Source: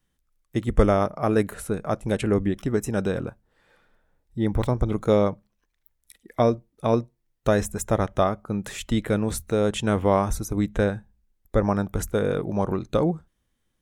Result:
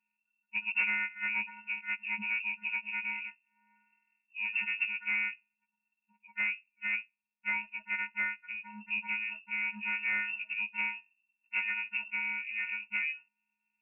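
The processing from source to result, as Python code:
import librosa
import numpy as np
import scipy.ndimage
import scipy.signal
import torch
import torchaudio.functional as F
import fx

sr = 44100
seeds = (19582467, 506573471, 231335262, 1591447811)

y = fx.freq_snap(x, sr, grid_st=6)
y = fx.low_shelf(y, sr, hz=440.0, db=3.5)
y = fx.hpss(y, sr, part='harmonic', gain_db=-6)
y = fx.low_shelf(y, sr, hz=98.0, db=-12.0, at=(6.96, 8.7))
y = 10.0 ** (-14.5 / 20.0) * np.tanh(y / 10.0 ** (-14.5 / 20.0))
y = fx.freq_invert(y, sr, carrier_hz=2700)
y = y * librosa.db_to_amplitude(-9.0)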